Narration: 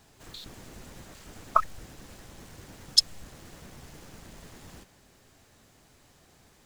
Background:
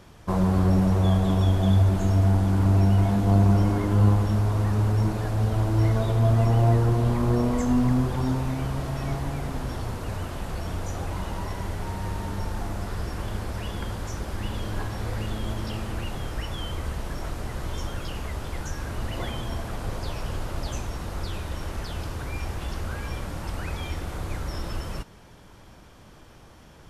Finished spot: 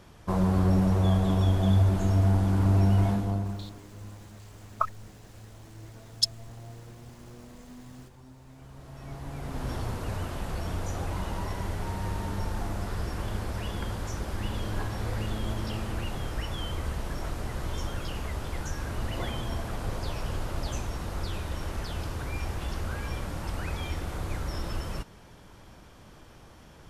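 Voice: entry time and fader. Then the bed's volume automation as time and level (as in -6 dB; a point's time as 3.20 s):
3.25 s, -5.0 dB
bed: 3.09 s -2.5 dB
3.87 s -26 dB
8.35 s -26 dB
9.70 s -1.5 dB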